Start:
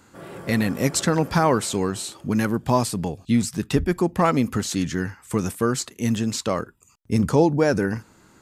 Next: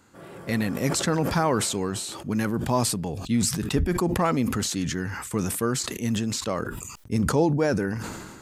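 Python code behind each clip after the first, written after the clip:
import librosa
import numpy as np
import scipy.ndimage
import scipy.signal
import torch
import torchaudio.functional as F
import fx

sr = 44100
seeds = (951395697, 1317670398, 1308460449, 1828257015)

y = fx.sustainer(x, sr, db_per_s=37.0)
y = y * librosa.db_to_amplitude(-4.5)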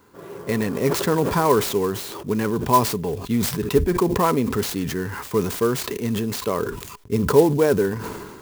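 y = fx.small_body(x, sr, hz=(420.0, 1000.0), ring_ms=45, db=12)
y = fx.clock_jitter(y, sr, seeds[0], jitter_ms=0.031)
y = y * librosa.db_to_amplitude(1.0)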